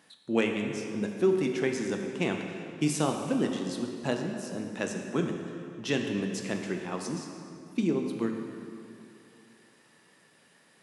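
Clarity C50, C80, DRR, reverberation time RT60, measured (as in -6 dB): 4.0 dB, 5.0 dB, 2.5 dB, 2.7 s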